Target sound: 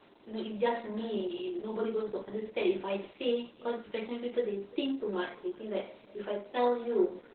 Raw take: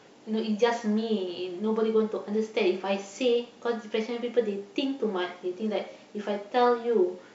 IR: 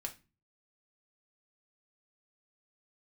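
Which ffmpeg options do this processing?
-filter_complex "[0:a]asettb=1/sr,asplit=3[a][b][c];[a]atrim=end=0.714[d];[b]atrim=start=0.71:end=1.63,asetpts=PTS-STARTPTS,afade=t=in:d=0.004:c=qsin,afade=t=out:st=0.916:d=0.004:c=qsin,asplit=2[e][f];[f]adelay=49,volume=-9dB[g];[e][g]amix=inputs=2:normalize=0,atrim=end_sample=40572[h];[c]atrim=start=1.626[i];[d][h]acrossfade=d=0.004:c1=hsin:c2=qsin[j];[j][i]acrossfade=d=0.004:c1=qsin:c2=hsin,aecho=1:1:346:0.0668[k];[1:a]atrim=start_sample=2205,atrim=end_sample=6615,asetrate=74970,aresample=44100[l];[k][l]afir=irnorm=-1:irlink=0,volume=2.5dB" -ar 48000 -c:a libopus -b:a 8k

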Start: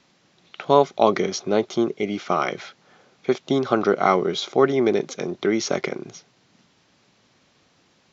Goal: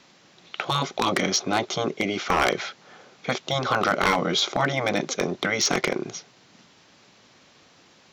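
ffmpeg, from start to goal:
-af "afftfilt=real='re*lt(hypot(re,im),0.398)':imag='im*lt(hypot(re,im),0.398)':win_size=1024:overlap=0.75,lowshelf=f=250:g=-5.5,aeval=exprs='0.119*(abs(mod(val(0)/0.119+3,4)-2)-1)':c=same,volume=6.5dB"

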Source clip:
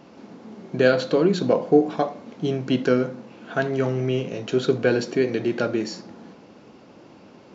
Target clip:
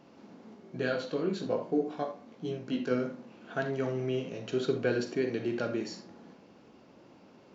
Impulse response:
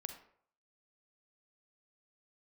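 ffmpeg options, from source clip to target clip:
-filter_complex "[0:a]asplit=3[a][b][c];[a]afade=t=out:st=0.54:d=0.02[d];[b]flanger=delay=16.5:depth=4.7:speed=1.2,afade=t=in:st=0.54:d=0.02,afade=t=out:st=2.9:d=0.02[e];[c]afade=t=in:st=2.9:d=0.02[f];[d][e][f]amix=inputs=3:normalize=0[g];[1:a]atrim=start_sample=2205,atrim=end_sample=3969[h];[g][h]afir=irnorm=-1:irlink=0,volume=-5.5dB"

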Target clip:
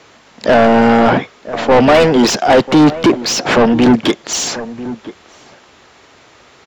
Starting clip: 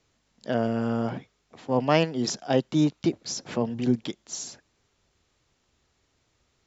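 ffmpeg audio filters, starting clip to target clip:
-filter_complex "[0:a]asplit=2[a][b];[b]asetrate=22050,aresample=44100,atempo=2,volume=-16dB[c];[a][c]amix=inputs=2:normalize=0,asplit=2[d][e];[e]highpass=f=720:p=1,volume=32dB,asoftclip=type=tanh:threshold=-4.5dB[f];[d][f]amix=inputs=2:normalize=0,lowpass=f=1.6k:p=1,volume=-6dB,asplit=2[g][h];[h]adelay=991.3,volume=-16dB,highshelf=f=4k:g=-22.3[i];[g][i]amix=inputs=2:normalize=0,acontrast=81"

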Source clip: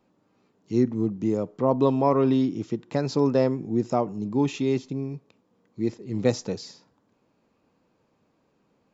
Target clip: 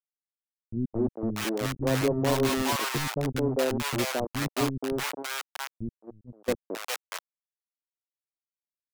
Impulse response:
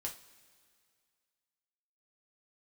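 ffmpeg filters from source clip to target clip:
-filter_complex "[0:a]acrusher=bits=3:mix=0:aa=0.000001,acrossover=split=250|750[a][b][c];[b]adelay=220[d];[c]adelay=640[e];[a][d][e]amix=inputs=3:normalize=0,asettb=1/sr,asplit=3[f][g][h];[f]atrim=end=6.024[i];[g]atrim=start=6.02:end=6.58,asetpts=PTS-STARTPTS,afade=t=in:d=0.004:c=qsin,afade=t=out:st=0.556:d=0.004:c=qsin,agate=range=-21dB:threshold=-24dB:ratio=16:detection=peak[j];[h]atrim=start=6.576[k];[i][j]acrossfade=d=0.004:c1=hsin:c2=qsin[l];[l][k]acrossfade=d=0.004:c1=qsin:c2=hsin,volume=-2.5dB"

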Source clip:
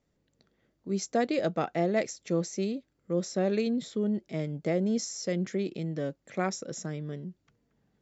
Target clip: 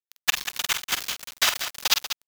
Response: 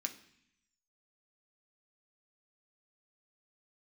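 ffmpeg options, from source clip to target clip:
-af "acompressor=threshold=-33dB:ratio=16,aexciter=amount=14.5:drive=6.6:freq=2.4k,acrusher=samples=16:mix=1:aa=0.000001,highpass=390,lowpass=4.9k,asetrate=155232,aresample=44100,acrusher=bits=3:mix=0:aa=0.000001,tremolo=f=14:d=0.54,aecho=1:1:46.65|189.5:0.398|0.316"

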